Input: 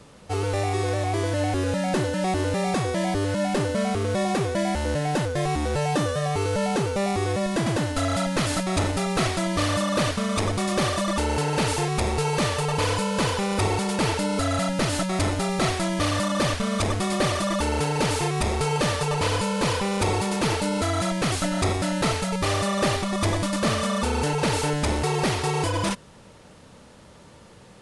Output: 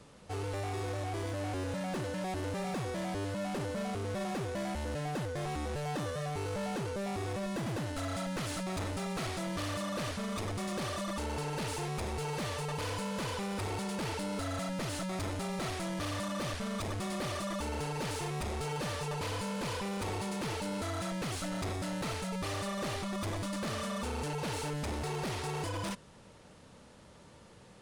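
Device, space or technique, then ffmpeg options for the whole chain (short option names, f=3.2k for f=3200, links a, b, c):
saturation between pre-emphasis and de-emphasis: -af "highshelf=f=7.2k:g=7.5,asoftclip=type=tanh:threshold=-25.5dB,highshelf=f=7.2k:g=-7.5,volume=-7dB"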